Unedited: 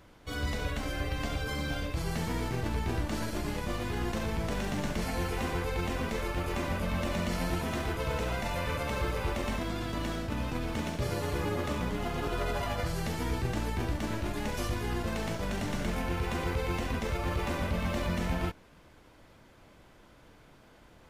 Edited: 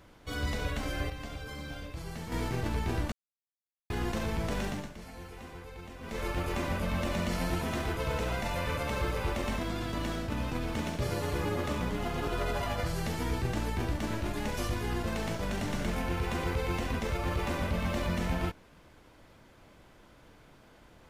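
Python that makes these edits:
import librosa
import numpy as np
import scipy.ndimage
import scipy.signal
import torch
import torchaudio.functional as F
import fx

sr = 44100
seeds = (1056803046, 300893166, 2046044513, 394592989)

y = fx.edit(x, sr, fx.clip_gain(start_s=1.1, length_s=1.22, db=-7.5),
    fx.silence(start_s=3.12, length_s=0.78),
    fx.fade_down_up(start_s=4.65, length_s=1.61, db=-13.5, fade_s=0.25), tone=tone)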